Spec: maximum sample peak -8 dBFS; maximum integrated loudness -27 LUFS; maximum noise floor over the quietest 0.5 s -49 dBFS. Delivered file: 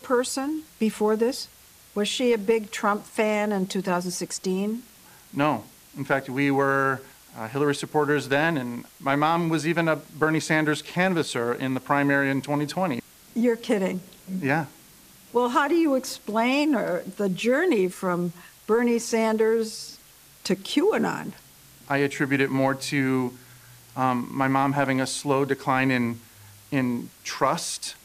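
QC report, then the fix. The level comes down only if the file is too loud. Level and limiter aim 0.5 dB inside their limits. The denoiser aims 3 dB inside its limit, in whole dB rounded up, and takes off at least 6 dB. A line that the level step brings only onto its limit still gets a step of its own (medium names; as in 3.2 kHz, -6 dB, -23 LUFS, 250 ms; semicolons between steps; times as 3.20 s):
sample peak -7.0 dBFS: fail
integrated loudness -25.0 LUFS: fail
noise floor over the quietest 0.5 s -52 dBFS: pass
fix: trim -2.5 dB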